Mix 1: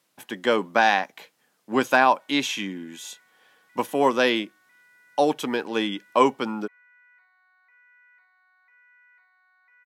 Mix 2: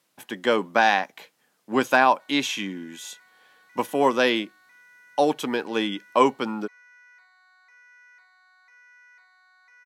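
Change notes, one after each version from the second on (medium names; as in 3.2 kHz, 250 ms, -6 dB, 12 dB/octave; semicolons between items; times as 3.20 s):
background: remove four-pole ladder low-pass 3.3 kHz, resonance 25%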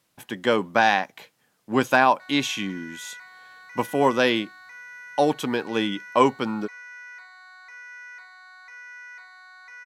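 background +11.5 dB; master: remove high-pass 200 Hz 12 dB/octave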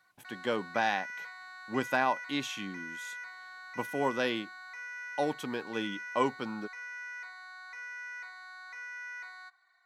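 speech -10.5 dB; background: entry -1.95 s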